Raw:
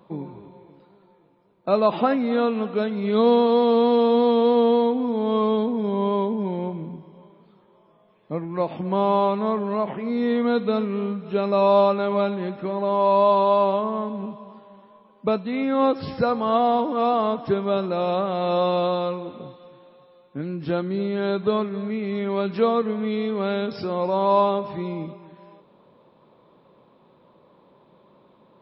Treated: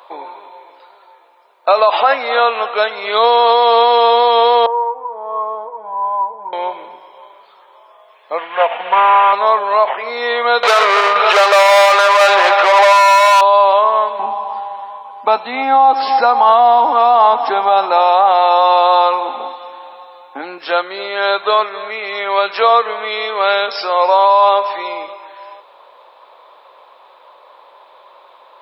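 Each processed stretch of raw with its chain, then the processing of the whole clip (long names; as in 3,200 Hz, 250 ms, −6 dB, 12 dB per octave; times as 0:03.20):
0:04.66–0:06.53: transistor ladder low-pass 1,100 Hz, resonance 55% + parametric band 740 Hz −9 dB 1.6 octaves + comb filter 6.2 ms, depth 92%
0:08.38–0:09.33: variable-slope delta modulation 16 kbit/s + comb filter 4.2 ms, depth 54%
0:10.63–0:13.41: high-pass filter 260 Hz 6 dB per octave + mid-hump overdrive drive 34 dB, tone 2,900 Hz, clips at −7.5 dBFS + shaped tremolo saw down 1.9 Hz, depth 60%
0:14.19–0:20.58: hollow resonant body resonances 250/810 Hz, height 18 dB + downward compressor 1.5 to 1, threshold −21 dBFS
whole clip: high-pass filter 670 Hz 24 dB per octave; boost into a limiter +18.5 dB; level −1 dB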